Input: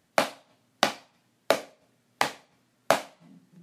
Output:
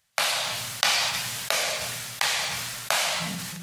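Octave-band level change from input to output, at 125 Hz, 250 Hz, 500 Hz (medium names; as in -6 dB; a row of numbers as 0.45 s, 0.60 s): +9.0 dB, -2.0 dB, -5.5 dB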